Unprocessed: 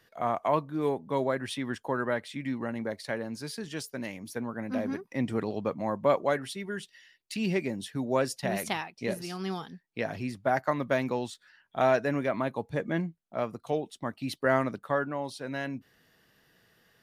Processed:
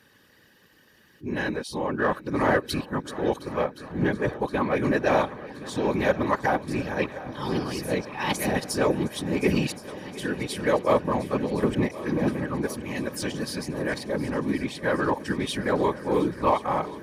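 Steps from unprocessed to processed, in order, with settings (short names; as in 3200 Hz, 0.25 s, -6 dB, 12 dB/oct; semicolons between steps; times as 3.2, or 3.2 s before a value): whole clip reversed; whisperiser; in parallel at -5.5 dB: soft clip -27.5 dBFS, distortion -8 dB; on the sum: notch comb 690 Hz; on a send: multi-head echo 0.357 s, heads second and third, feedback 71%, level -17.5 dB; on the sum: gain +3.5 dB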